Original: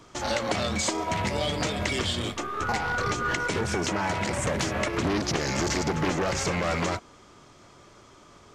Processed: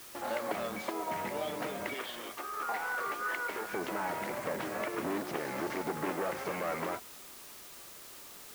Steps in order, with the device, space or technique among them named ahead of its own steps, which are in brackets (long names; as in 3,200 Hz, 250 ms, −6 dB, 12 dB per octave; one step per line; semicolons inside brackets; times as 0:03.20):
0:01.94–0:03.73: meter weighting curve A
wax cylinder (band-pass filter 270–2,000 Hz; tape wow and flutter; white noise bed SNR 13 dB)
level −6 dB